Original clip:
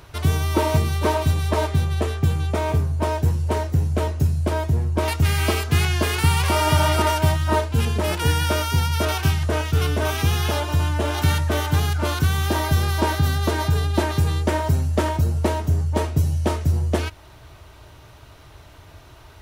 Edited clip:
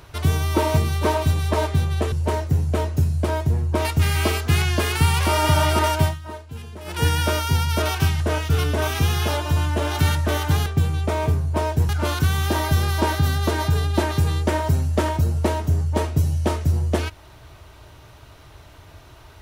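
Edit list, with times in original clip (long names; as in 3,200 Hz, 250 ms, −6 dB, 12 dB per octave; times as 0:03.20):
0:02.12–0:03.35: move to 0:11.89
0:07.25–0:08.25: duck −15 dB, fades 0.17 s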